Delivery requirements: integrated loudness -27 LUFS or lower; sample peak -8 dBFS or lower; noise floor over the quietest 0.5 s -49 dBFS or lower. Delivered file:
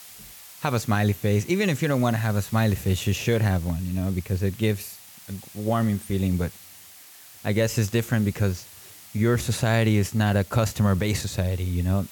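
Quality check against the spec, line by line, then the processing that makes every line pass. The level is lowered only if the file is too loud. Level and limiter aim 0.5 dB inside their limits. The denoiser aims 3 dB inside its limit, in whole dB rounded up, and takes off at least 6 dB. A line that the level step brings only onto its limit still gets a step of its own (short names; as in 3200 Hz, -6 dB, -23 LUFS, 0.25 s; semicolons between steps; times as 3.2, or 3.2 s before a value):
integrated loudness -24.5 LUFS: fail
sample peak -11.5 dBFS: OK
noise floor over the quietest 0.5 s -47 dBFS: fail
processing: gain -3 dB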